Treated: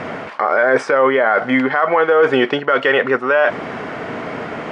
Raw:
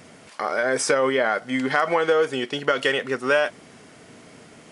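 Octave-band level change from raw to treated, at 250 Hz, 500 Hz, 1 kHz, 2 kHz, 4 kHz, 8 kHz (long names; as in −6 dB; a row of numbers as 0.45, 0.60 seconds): +8.0 dB, +7.5 dB, +8.5 dB, +7.5 dB, +1.5 dB, below −10 dB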